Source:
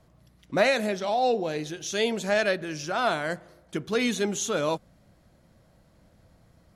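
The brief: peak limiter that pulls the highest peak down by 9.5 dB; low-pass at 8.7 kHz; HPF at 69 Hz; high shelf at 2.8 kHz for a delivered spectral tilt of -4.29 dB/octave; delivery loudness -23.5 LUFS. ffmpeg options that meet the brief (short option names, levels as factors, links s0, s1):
-af "highpass=69,lowpass=8700,highshelf=f=2800:g=-4.5,volume=2.11,alimiter=limit=0.251:level=0:latency=1"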